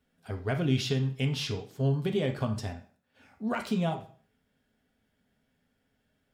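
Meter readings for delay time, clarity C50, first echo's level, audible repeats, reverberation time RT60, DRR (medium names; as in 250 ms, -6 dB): no echo, 10.5 dB, no echo, no echo, 0.45 s, 4.0 dB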